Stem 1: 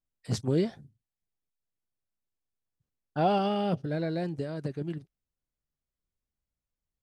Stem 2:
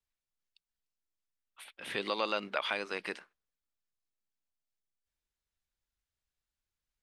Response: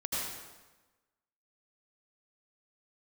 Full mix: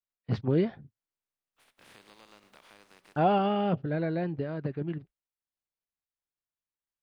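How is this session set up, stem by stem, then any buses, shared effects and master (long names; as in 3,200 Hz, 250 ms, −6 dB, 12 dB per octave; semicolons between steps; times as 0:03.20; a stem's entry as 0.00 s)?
+1.0 dB, 0.00 s, no send, noise gate −50 dBFS, range −32 dB; drawn EQ curve 620 Hz 0 dB, 1,100 Hz +3 dB, 2,600 Hz +4 dB, 4,600 Hz −5 dB, 7,700 Hz −27 dB
−12.5 dB, 0.00 s, send −19 dB, compressing power law on the bin magnitudes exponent 0.32; downward compressor 8 to 1, threshold −41 dBFS, peak gain reduction 14.5 dB; harmonic and percussive parts rebalanced harmonic +8 dB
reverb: on, RT60 1.2 s, pre-delay 73 ms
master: high-shelf EQ 2,900 Hz −9 dB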